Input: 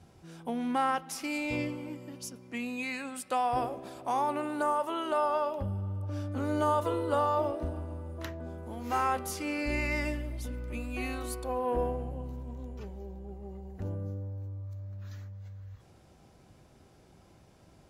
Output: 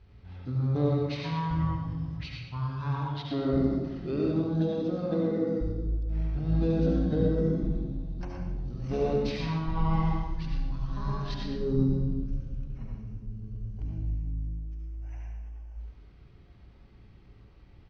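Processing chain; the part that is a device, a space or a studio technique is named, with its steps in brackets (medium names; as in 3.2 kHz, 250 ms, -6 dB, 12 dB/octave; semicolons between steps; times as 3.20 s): monster voice (pitch shift -10.5 st; formant shift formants -5 st; bass shelf 110 Hz +6.5 dB; delay 119 ms -10.5 dB; reverberation RT60 1.0 s, pre-delay 65 ms, DRR -1.5 dB); trim -2 dB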